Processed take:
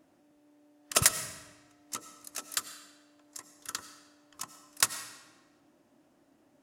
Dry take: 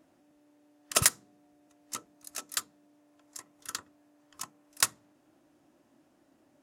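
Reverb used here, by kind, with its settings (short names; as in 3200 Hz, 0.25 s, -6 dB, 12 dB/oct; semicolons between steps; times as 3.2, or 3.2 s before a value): digital reverb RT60 1.2 s, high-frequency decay 0.9×, pre-delay 55 ms, DRR 11 dB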